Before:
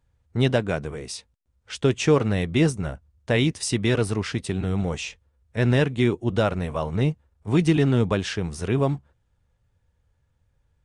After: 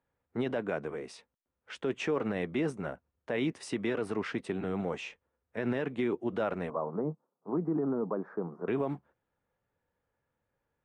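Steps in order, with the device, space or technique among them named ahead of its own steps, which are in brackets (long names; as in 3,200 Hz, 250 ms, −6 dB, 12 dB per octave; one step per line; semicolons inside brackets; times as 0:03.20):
DJ mixer with the lows and highs turned down (three-way crossover with the lows and the highs turned down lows −22 dB, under 200 Hz, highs −16 dB, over 2,500 Hz; brickwall limiter −19.5 dBFS, peak gain reduction 11 dB)
0:06.70–0:08.68: elliptic band-pass filter 150–1,200 Hz, stop band 40 dB
level −2.5 dB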